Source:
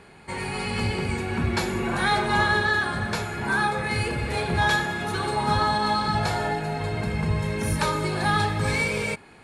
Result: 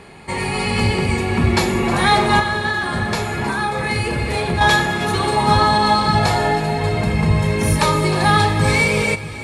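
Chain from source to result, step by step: 2.39–4.61 s: compression, threshold -25 dBFS, peak gain reduction 7.5 dB; band-stop 1.5 kHz, Q 6.6; two-band feedback delay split 460 Hz, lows 631 ms, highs 312 ms, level -15 dB; trim +8.5 dB

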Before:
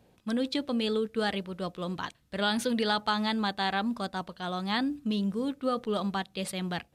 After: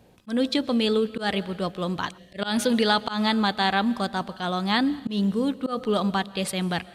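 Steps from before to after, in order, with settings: algorithmic reverb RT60 1.4 s, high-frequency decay 0.95×, pre-delay 90 ms, DRR 19 dB; time-frequency box 2.18–2.39 s, 760–1700 Hz -19 dB; slow attack 126 ms; trim +6.5 dB

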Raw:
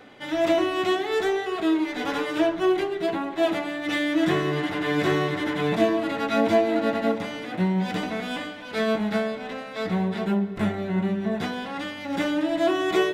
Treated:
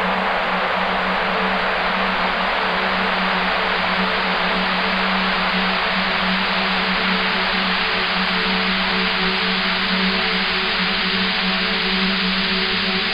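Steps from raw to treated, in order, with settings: painted sound rise, 9.53–10.15 s, 450–5100 Hz -20 dBFS; added noise brown -39 dBFS; Paulstretch 45×, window 1.00 s, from 9.75 s

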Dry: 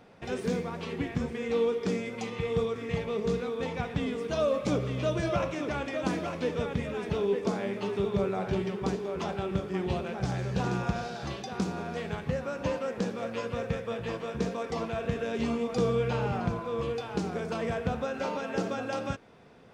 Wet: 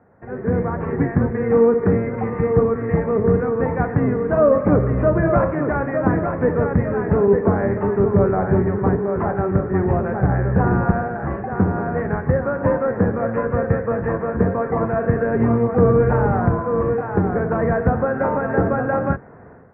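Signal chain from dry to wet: octave divider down 1 oct, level -2 dB; high-pass 53 Hz; level rider gain up to 13.5 dB; elliptic low-pass 1.8 kHz, stop band 50 dB

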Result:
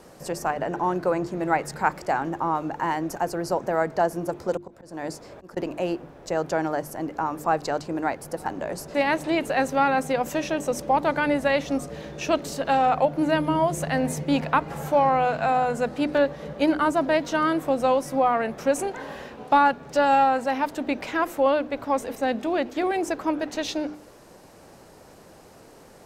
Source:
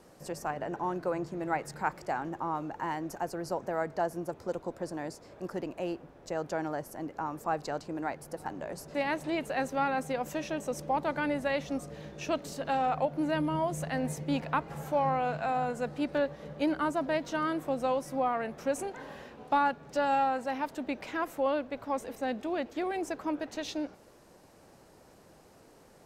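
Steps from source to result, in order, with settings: 4.57–5.57 s: slow attack 289 ms; hum notches 50/100/150/200/250/300/350 Hz; trim +8.5 dB

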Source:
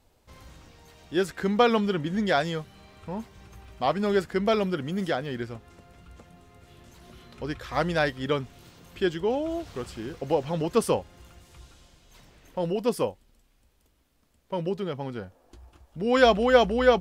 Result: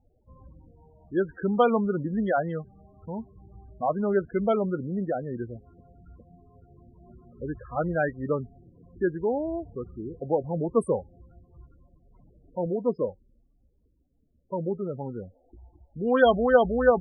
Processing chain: local Wiener filter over 15 samples; loudest bins only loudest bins 16; 12.66–13.09 s: comb of notches 800 Hz

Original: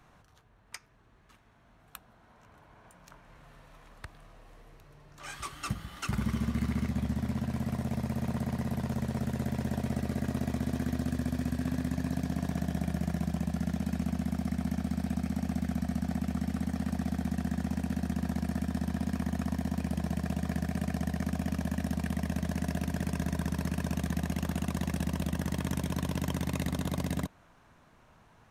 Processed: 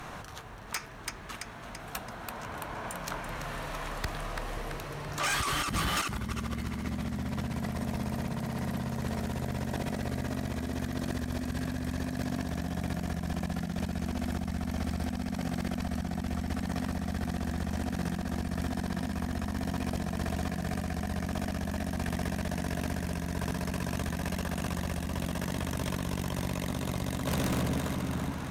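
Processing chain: bass shelf 230 Hz -5.5 dB; two-band feedback delay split 400 Hz, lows 523 ms, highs 335 ms, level -11.5 dB; compressor with a negative ratio -44 dBFS, ratio -1; sine folder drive 16 dB, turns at -16.5 dBFS; trim -8 dB

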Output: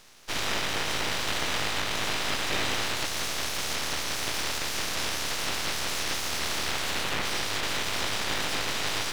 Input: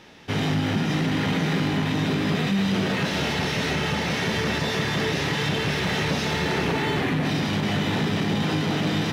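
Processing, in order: spectral peaks clipped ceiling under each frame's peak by 27 dB; modulation noise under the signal 28 dB; half-wave rectifier; trim -1.5 dB

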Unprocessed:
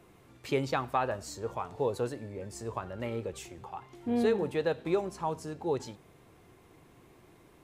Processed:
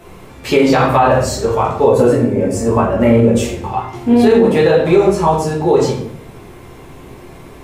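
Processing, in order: 1.87–3.37 s: fifteen-band graphic EQ 250 Hz +8 dB, 630 Hz +4 dB, 4 kHz -8 dB; simulated room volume 110 m³, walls mixed, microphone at 1.5 m; loudness maximiser +15.5 dB; trim -1 dB

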